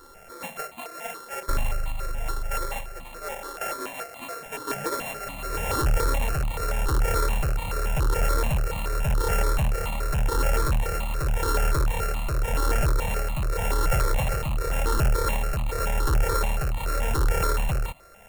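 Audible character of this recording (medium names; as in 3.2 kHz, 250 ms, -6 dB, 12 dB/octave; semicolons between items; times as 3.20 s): a buzz of ramps at a fixed pitch in blocks of 32 samples; tremolo triangle 0.88 Hz, depth 55%; notches that jump at a steady rate 7 Hz 680–1500 Hz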